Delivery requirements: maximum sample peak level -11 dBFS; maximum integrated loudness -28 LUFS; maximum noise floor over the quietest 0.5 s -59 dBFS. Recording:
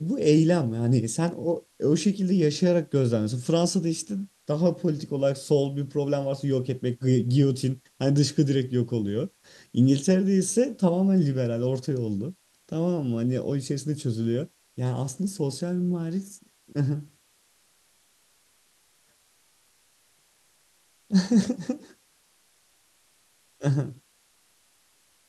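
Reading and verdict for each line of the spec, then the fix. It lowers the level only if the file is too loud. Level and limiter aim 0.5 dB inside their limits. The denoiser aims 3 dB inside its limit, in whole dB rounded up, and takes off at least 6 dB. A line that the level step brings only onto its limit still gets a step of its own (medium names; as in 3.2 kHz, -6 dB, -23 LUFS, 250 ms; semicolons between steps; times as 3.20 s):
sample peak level -8.5 dBFS: fail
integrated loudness -25.5 LUFS: fail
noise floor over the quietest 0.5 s -64 dBFS: pass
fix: trim -3 dB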